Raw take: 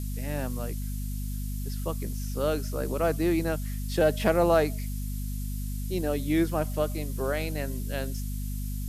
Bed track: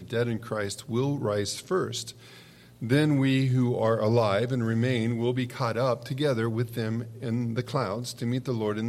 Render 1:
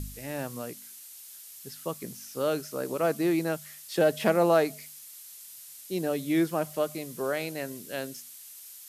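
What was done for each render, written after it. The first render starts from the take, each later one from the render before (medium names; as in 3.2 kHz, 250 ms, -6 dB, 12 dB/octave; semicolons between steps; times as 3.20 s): de-hum 50 Hz, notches 5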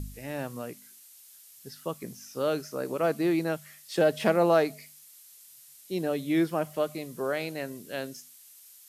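noise print and reduce 6 dB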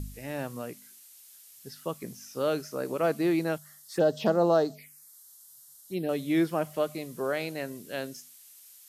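3.58–6.09 s: touch-sensitive phaser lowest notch 380 Hz, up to 2.3 kHz, full sweep at -22.5 dBFS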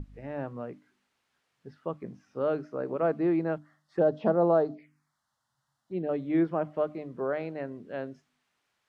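low-pass 1.4 kHz 12 dB/octave; hum notches 50/100/150/200/250/300 Hz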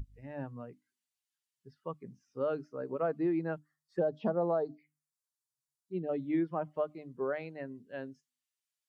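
expander on every frequency bin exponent 1.5; compression 5:1, threshold -27 dBFS, peak gain reduction 6.5 dB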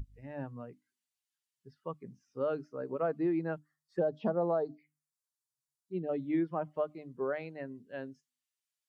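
no audible change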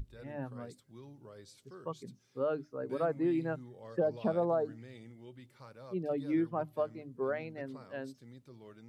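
add bed track -25 dB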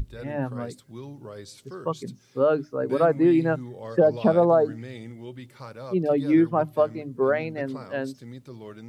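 trim +12 dB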